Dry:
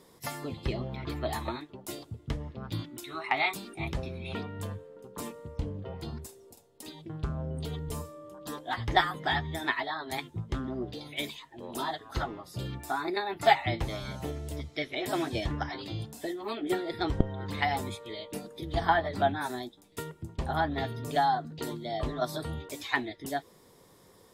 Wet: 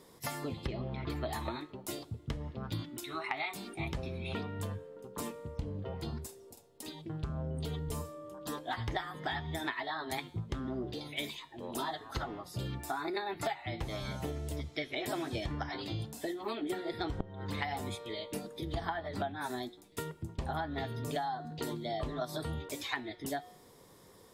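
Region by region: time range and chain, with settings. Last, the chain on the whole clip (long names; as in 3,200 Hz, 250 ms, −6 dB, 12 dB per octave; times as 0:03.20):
0:00.67–0:01.10: gain into a clipping stage and back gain 23 dB + high-frequency loss of the air 97 metres
whole clip: hum removal 181.2 Hz, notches 31; downward compressor 16 to 1, threshold −32 dBFS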